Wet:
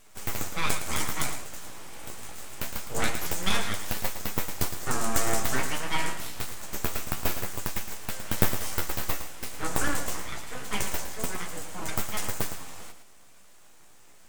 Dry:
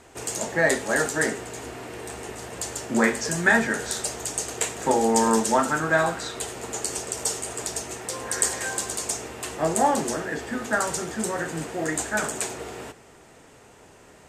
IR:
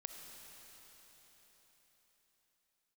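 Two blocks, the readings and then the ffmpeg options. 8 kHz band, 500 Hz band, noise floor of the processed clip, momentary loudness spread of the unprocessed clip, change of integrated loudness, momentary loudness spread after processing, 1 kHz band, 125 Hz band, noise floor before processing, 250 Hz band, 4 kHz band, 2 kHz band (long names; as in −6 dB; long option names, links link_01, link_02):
−6.5 dB, −11.5 dB, −50 dBFS, 14 LU, −6.0 dB, 12 LU, −8.0 dB, −0.5 dB, −51 dBFS, −9.5 dB, −0.5 dB, −8.5 dB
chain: -filter_complex "[0:a]crystalizer=i=1.5:c=0,aeval=exprs='abs(val(0))':channel_layout=same,flanger=delay=9.4:depth=7.4:regen=45:speed=0.25:shape=sinusoidal,asplit=2[link_01][link_02];[1:a]atrim=start_sample=2205,atrim=end_sample=3969,adelay=112[link_03];[link_02][link_03]afir=irnorm=-1:irlink=0,volume=-5dB[link_04];[link_01][link_04]amix=inputs=2:normalize=0,volume=-1.5dB"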